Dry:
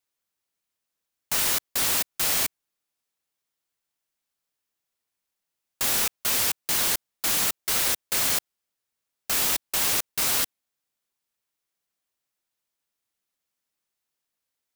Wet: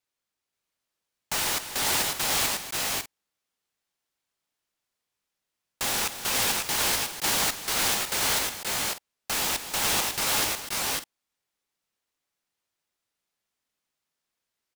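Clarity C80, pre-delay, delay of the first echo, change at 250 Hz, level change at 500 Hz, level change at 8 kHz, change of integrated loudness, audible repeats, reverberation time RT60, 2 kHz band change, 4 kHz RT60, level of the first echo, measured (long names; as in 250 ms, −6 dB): no reverb audible, no reverb audible, 244 ms, +2.5 dB, +3.0 dB, −0.5 dB, −2.5 dB, 3, no reverb audible, +2.5 dB, no reverb audible, −11.0 dB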